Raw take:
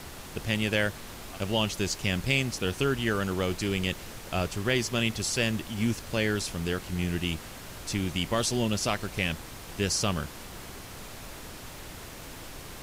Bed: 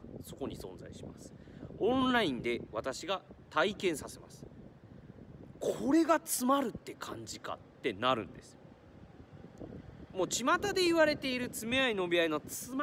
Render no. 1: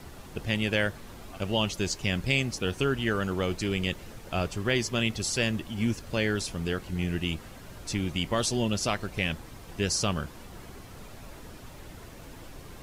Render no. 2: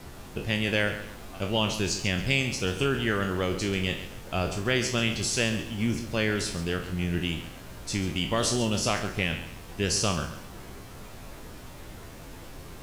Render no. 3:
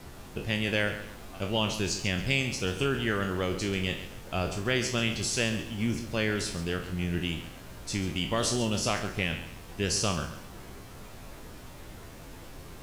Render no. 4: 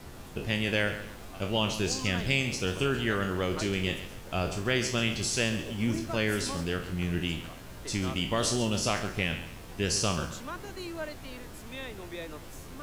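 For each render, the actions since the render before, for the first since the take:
broadband denoise 8 dB, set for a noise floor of −43 dBFS
peak hold with a decay on every bin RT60 0.39 s; feedback echo at a low word length 137 ms, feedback 35%, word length 8 bits, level −12 dB
level −2 dB
mix in bed −11 dB

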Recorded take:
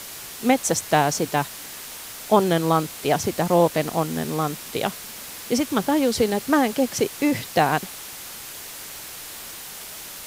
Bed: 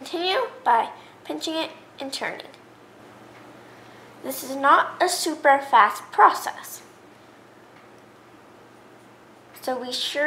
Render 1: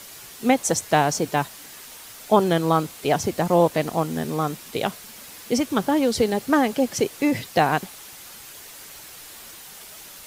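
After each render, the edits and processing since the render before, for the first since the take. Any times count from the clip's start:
broadband denoise 6 dB, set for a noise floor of −38 dBFS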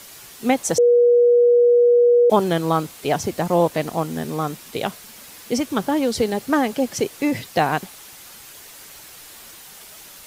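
0:00.78–0:02.30: beep over 481 Hz −10.5 dBFS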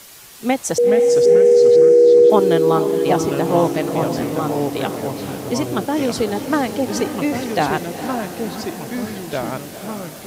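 delay with pitch and tempo change per echo 327 ms, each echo −3 semitones, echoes 3, each echo −6 dB
feedback delay with all-pass diffusion 464 ms, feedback 56%, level −9.5 dB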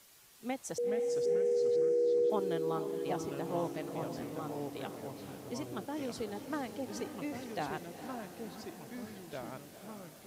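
level −19 dB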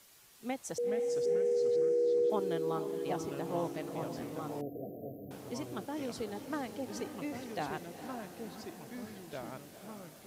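0:04.61–0:05.31: linear-phase brick-wall band-stop 750–12,000 Hz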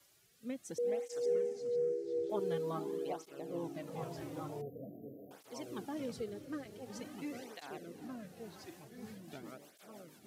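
rotating-speaker cabinet horn 0.65 Hz, later 6.3 Hz, at 0:08.55
through-zero flanger with one copy inverted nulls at 0.46 Hz, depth 4.7 ms

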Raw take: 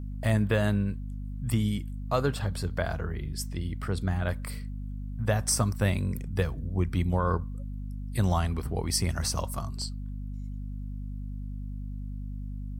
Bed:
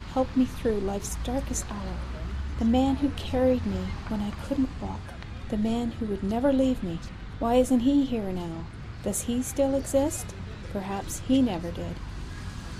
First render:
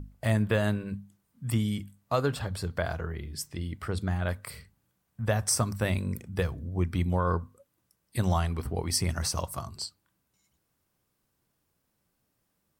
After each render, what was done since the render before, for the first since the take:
mains-hum notches 50/100/150/200/250 Hz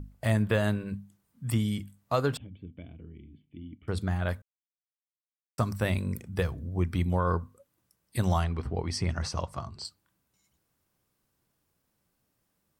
0:02.37–0:03.88: formant resonators in series i
0:04.42–0:05.58: silence
0:08.44–0:09.85: high-frequency loss of the air 110 metres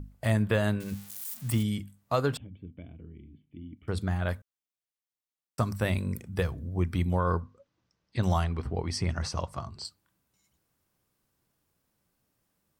0:00.80–0:01.63: spike at every zero crossing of −32 dBFS
0:02.40–0:03.77: high-frequency loss of the air 190 metres
0:07.40–0:08.23: Butterworth low-pass 6,100 Hz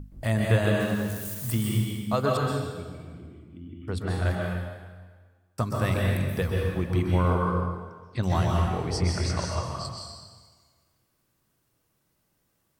dense smooth reverb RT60 1.5 s, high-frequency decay 0.9×, pre-delay 115 ms, DRR −2 dB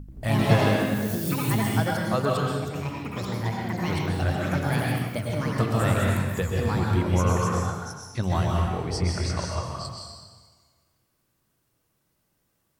delay with pitch and tempo change per echo 86 ms, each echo +4 semitones, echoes 3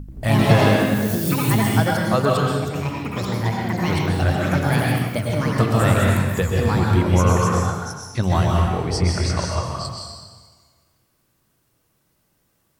level +6 dB
brickwall limiter −3 dBFS, peak gain reduction 2.5 dB

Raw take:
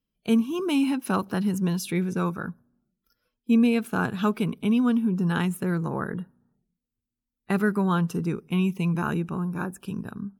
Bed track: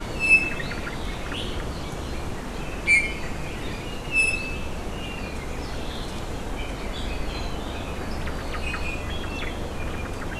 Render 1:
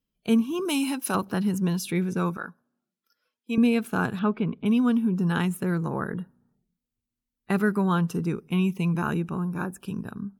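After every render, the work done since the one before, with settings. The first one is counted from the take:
0:00.65–0:01.15: bass and treble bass −9 dB, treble +9 dB
0:02.37–0:03.58: meter weighting curve A
0:04.19–0:04.66: high-frequency loss of the air 360 metres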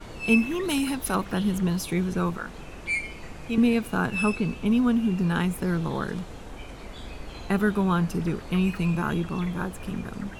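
mix in bed track −9.5 dB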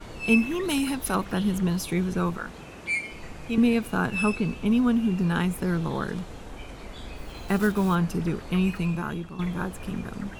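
0:02.51–0:03.11: high-pass filter 54 Hz → 140 Hz
0:07.16–0:07.96: one scale factor per block 5 bits
0:08.69–0:09.39: fade out, to −10.5 dB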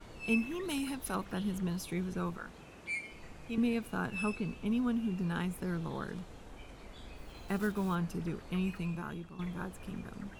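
level −10 dB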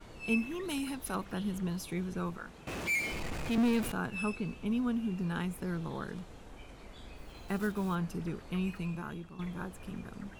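0:02.67–0:03.92: power curve on the samples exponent 0.5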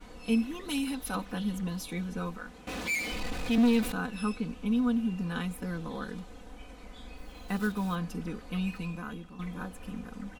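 comb filter 4 ms, depth 77%
dynamic equaliser 3,900 Hz, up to +5 dB, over −56 dBFS, Q 2.5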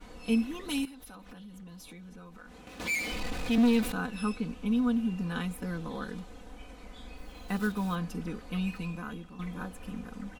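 0:00.85–0:02.80: downward compressor 16 to 1, threshold −44 dBFS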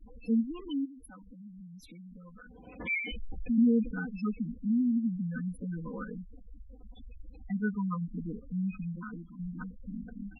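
gate on every frequency bin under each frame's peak −10 dB strong
dynamic equaliser 710 Hz, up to −5 dB, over −58 dBFS, Q 6.4

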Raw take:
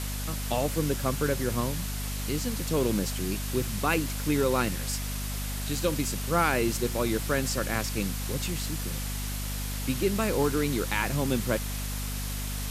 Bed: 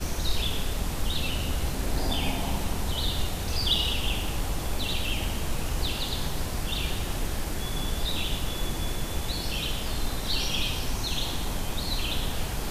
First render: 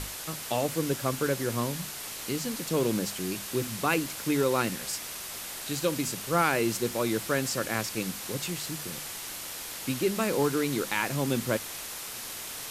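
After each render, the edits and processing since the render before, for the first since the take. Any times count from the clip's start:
mains-hum notches 50/100/150/200/250 Hz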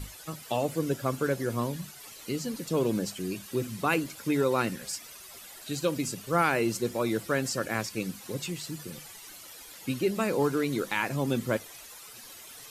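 broadband denoise 13 dB, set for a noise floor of −39 dBFS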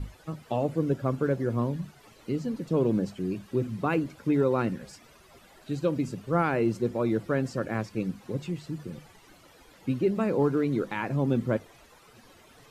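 low-pass filter 1,200 Hz 6 dB per octave
low-shelf EQ 370 Hz +5 dB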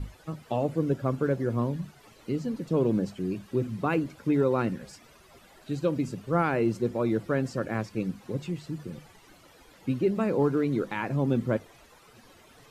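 no processing that can be heard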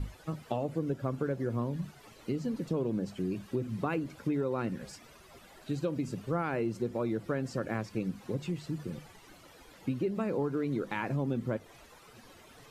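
downward compressor 4 to 1, threshold −29 dBFS, peak gain reduction 8.5 dB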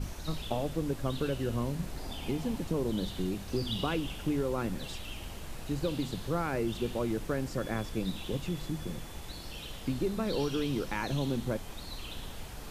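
mix in bed −13 dB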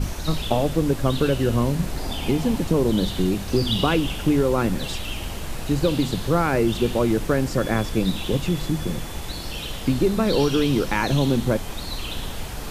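level +11.5 dB

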